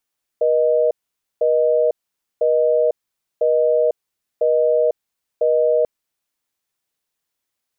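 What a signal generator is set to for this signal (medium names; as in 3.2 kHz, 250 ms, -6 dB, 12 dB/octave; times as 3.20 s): call progress tone busy tone, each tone -16 dBFS 5.44 s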